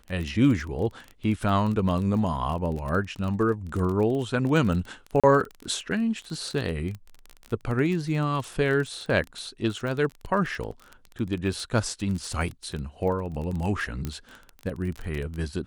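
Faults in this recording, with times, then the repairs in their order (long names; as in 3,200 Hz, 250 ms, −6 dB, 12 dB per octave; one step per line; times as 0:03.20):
surface crackle 25 per second −30 dBFS
0:05.20–0:05.24: drop-out 36 ms
0:14.05: click −17 dBFS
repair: click removal
repair the gap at 0:05.20, 36 ms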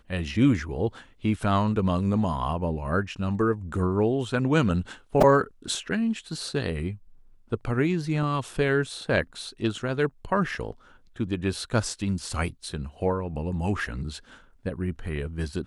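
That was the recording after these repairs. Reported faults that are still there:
none of them is left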